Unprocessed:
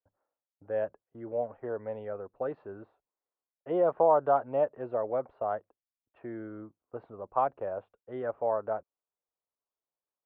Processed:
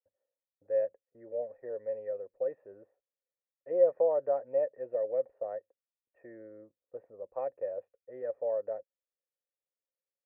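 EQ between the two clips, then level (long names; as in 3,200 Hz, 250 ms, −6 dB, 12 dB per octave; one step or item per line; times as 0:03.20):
formant resonators in series e
+4.0 dB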